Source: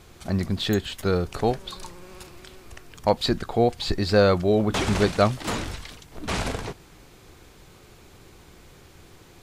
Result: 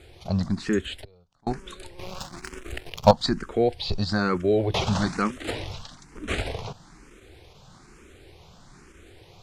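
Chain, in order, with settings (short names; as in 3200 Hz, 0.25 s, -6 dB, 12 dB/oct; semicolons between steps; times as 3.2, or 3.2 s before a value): Bessel low-pass 8300 Hz, order 4; 1.99–3.11 sample leveller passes 3; in parallel at +2.5 dB: level quantiser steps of 13 dB; 1.04–1.47 on the sum: flipped gate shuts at -21 dBFS, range -33 dB; endless phaser +1.1 Hz; gain -3.5 dB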